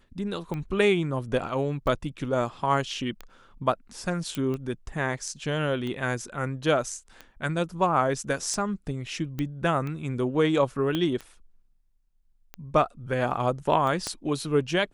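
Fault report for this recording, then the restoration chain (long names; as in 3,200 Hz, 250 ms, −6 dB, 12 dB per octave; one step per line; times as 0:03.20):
scratch tick 45 rpm −22 dBFS
0:04.35: click −16 dBFS
0:09.39: click −18 dBFS
0:10.95: click −15 dBFS
0:14.07: click −15 dBFS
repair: click removal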